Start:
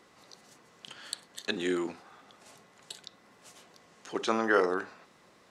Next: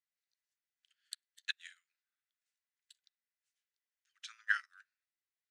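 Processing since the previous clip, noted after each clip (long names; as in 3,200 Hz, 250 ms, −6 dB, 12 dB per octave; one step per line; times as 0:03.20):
Butterworth high-pass 1,500 Hz 48 dB per octave
expander for the loud parts 2.5 to 1, over −52 dBFS
level +1.5 dB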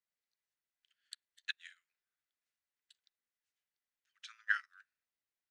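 high-shelf EQ 6,100 Hz −10.5 dB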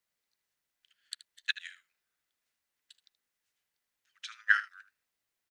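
single-tap delay 77 ms −15 dB
level +8 dB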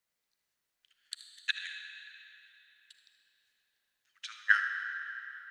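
convolution reverb RT60 3.4 s, pre-delay 20 ms, DRR 5.5 dB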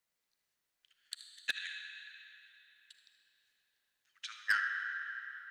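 soft clipping −21.5 dBFS, distortion −8 dB
level −1 dB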